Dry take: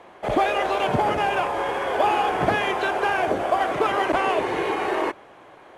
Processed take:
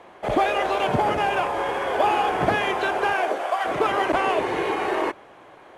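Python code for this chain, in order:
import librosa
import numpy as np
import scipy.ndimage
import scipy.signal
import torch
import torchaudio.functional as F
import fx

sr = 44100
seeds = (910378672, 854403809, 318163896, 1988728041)

y = fx.highpass(x, sr, hz=fx.line((3.13, 280.0), (3.64, 910.0)), slope=12, at=(3.13, 3.64), fade=0.02)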